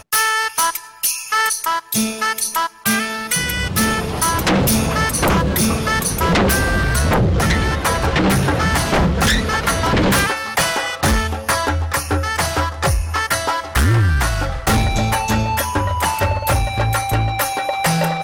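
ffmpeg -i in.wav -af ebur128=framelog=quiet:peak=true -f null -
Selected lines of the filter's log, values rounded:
Integrated loudness:
  I:         -17.4 LUFS
  Threshold: -27.4 LUFS
Loudness range:
  LRA:         2.2 LU
  Threshold: -37.3 LUFS
  LRA low:   -18.4 LUFS
  LRA high:  -16.2 LUFS
True peak:
  Peak:       -8.4 dBFS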